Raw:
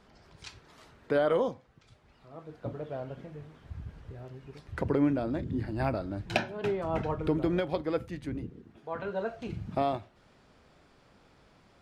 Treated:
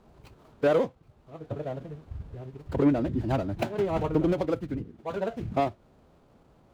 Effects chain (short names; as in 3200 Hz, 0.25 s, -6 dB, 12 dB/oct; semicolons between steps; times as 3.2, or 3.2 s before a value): median filter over 25 samples; time stretch by phase-locked vocoder 0.57×; gain +5 dB